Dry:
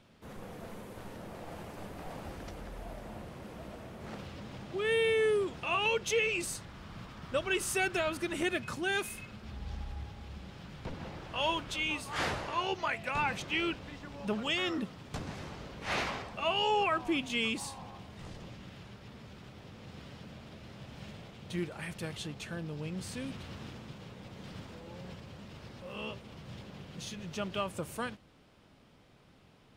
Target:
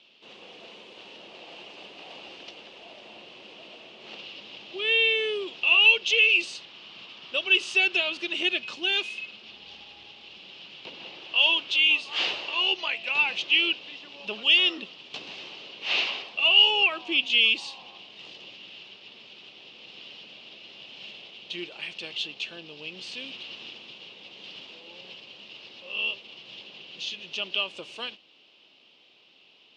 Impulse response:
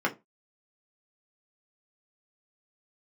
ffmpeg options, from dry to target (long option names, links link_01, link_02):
-af "aexciter=amount=5.3:drive=4.8:freq=2600,highpass=350,equalizer=frequency=360:width_type=q:width=4:gain=4,equalizer=frequency=1400:width_type=q:width=4:gain=-4,equalizer=frequency=2800:width_type=q:width=4:gain=9,lowpass=frequency=4200:width=0.5412,lowpass=frequency=4200:width=1.3066,volume=-2dB"